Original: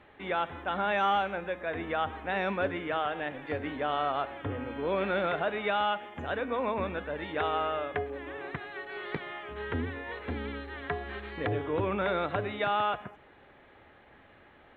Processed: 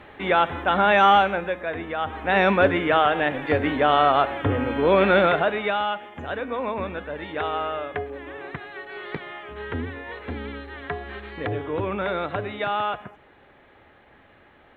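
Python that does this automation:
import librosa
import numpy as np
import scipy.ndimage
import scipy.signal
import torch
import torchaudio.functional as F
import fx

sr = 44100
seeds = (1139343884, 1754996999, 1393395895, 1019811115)

y = fx.gain(x, sr, db=fx.line((1.19, 11.0), (1.95, 2.0), (2.38, 12.0), (5.19, 12.0), (5.85, 3.0)))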